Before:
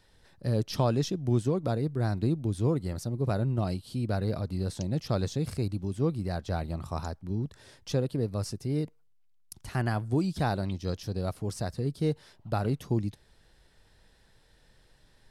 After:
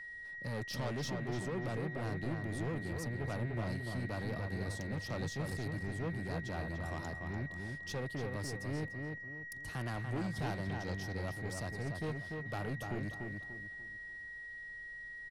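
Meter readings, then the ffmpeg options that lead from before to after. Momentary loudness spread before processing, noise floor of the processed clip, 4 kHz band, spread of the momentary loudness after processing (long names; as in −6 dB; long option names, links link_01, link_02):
7 LU, −47 dBFS, −6.0 dB, 7 LU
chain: -filter_complex "[0:a]acrossover=split=160|1500[link_01][link_02][link_03];[link_01]asoftclip=type=hard:threshold=-34.5dB[link_04];[link_04][link_02][link_03]amix=inputs=3:normalize=0,aeval=exprs='val(0)+0.01*sin(2*PI*1900*n/s)':channel_layout=same,asoftclip=type=tanh:threshold=-30dB,asplit=2[link_05][link_06];[link_06]adelay=293,lowpass=frequency=2700:poles=1,volume=-4dB,asplit=2[link_07][link_08];[link_08]adelay=293,lowpass=frequency=2700:poles=1,volume=0.36,asplit=2[link_09][link_10];[link_10]adelay=293,lowpass=frequency=2700:poles=1,volume=0.36,asplit=2[link_11][link_12];[link_12]adelay=293,lowpass=frequency=2700:poles=1,volume=0.36,asplit=2[link_13][link_14];[link_14]adelay=293,lowpass=frequency=2700:poles=1,volume=0.36[link_15];[link_05][link_07][link_09][link_11][link_13][link_15]amix=inputs=6:normalize=0,volume=-4.5dB"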